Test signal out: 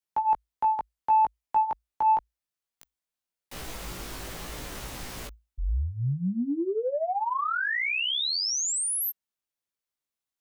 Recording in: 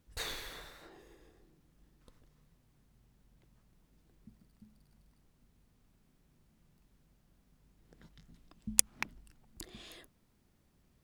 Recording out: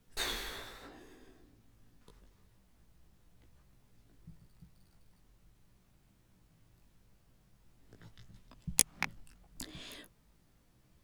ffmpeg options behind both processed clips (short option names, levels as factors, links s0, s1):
-af "flanger=delay=16:depth=2.1:speed=0.82,afreqshift=-56,asoftclip=type=tanh:threshold=0.15,volume=2.11"